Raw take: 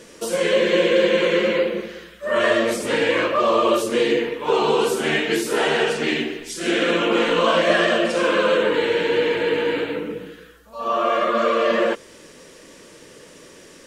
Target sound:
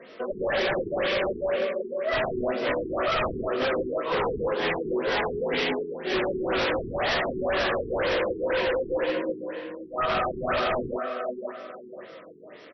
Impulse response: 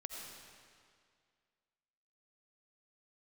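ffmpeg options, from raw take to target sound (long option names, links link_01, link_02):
-filter_complex "[0:a]acrossover=split=120[link_01][link_02];[link_01]highpass=74[link_03];[link_02]adynamicsmooth=sensitivity=7:basefreq=5400[link_04];[link_03][link_04]amix=inputs=2:normalize=0,lowshelf=frequency=210:gain=-10,asetrate=48000,aresample=44100,highshelf=frequency=7000:gain=-9.5,asplit=2[link_05][link_06];[link_06]adelay=19,volume=-7.5dB[link_07];[link_05][link_07]amix=inputs=2:normalize=0,asplit=2[link_08][link_09];[link_09]adelay=536,lowpass=frequency=2400:poles=1,volume=-10dB,asplit=2[link_10][link_11];[link_11]adelay=536,lowpass=frequency=2400:poles=1,volume=0.33,asplit=2[link_12][link_13];[link_13]adelay=536,lowpass=frequency=2400:poles=1,volume=0.33,asplit=2[link_14][link_15];[link_15]adelay=536,lowpass=frequency=2400:poles=1,volume=0.33[link_16];[link_08][link_10][link_12][link_14][link_16]amix=inputs=5:normalize=0,asplit=2[link_17][link_18];[link_18]asoftclip=type=tanh:threshold=-23dB,volume=-4.5dB[link_19];[link_17][link_19]amix=inputs=2:normalize=0,flanger=delay=4.3:depth=4.4:regen=-50:speed=0.18:shape=triangular,aeval=exprs='0.1*(abs(mod(val(0)/0.1+3,4)-2)-1)':channel_layout=same,afftfilt=real='re*lt(b*sr/1024,430*pow(6000/430,0.5+0.5*sin(2*PI*2*pts/sr)))':imag='im*lt(b*sr/1024,430*pow(6000/430,0.5+0.5*sin(2*PI*2*pts/sr)))':win_size=1024:overlap=0.75"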